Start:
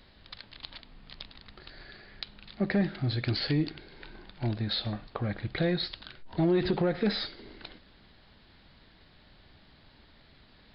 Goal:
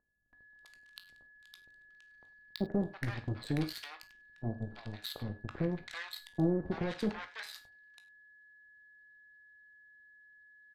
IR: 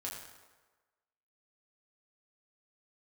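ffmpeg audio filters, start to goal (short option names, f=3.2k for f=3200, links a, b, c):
-filter_complex "[0:a]aeval=exprs='0.168*(cos(1*acos(clip(val(0)/0.168,-1,1)))-cos(1*PI/2))+0.00473*(cos(3*acos(clip(val(0)/0.168,-1,1)))-cos(3*PI/2))+0.0211*(cos(7*acos(clip(val(0)/0.168,-1,1)))-cos(7*PI/2))+0.00376*(cos(8*acos(clip(val(0)/0.168,-1,1)))-cos(8*PI/2))':c=same,aphaser=in_gain=1:out_gain=1:delay=1.2:decay=0.26:speed=1.1:type=triangular,aeval=exprs='val(0)+0.00224*sin(2*PI*1700*n/s)':c=same,acrossover=split=900[a][b];[b]adelay=330[c];[a][c]amix=inputs=2:normalize=0,asplit=2[d][e];[1:a]atrim=start_sample=2205,atrim=end_sample=3969,adelay=18[f];[e][f]afir=irnorm=-1:irlink=0,volume=-6.5dB[g];[d][g]amix=inputs=2:normalize=0,volume=-6.5dB"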